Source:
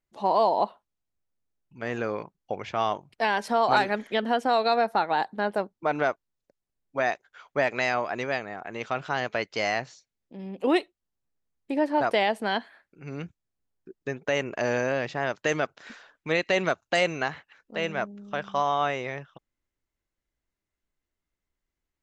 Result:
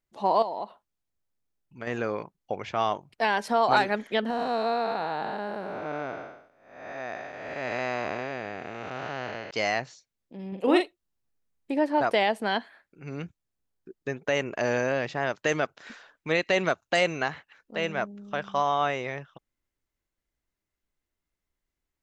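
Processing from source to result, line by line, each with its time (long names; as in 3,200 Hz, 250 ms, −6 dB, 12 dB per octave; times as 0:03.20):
0:00.42–0:01.87: downward compressor 3 to 1, threshold −32 dBFS
0:04.30–0:09.51: spectrum smeared in time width 404 ms
0:10.48–0:11.72: double-tracking delay 42 ms −5 dB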